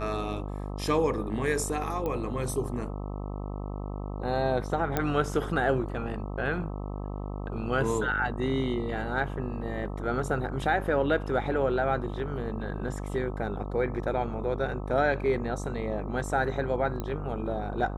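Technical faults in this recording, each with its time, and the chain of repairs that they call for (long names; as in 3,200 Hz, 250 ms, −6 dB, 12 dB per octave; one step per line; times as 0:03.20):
mains buzz 50 Hz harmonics 26 −35 dBFS
0:02.06: click −20 dBFS
0:04.97: click −12 dBFS
0:17.00: click −20 dBFS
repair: click removal
hum removal 50 Hz, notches 26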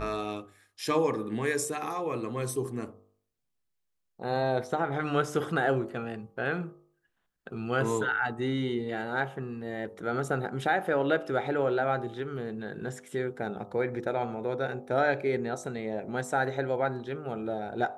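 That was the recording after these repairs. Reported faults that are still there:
none of them is left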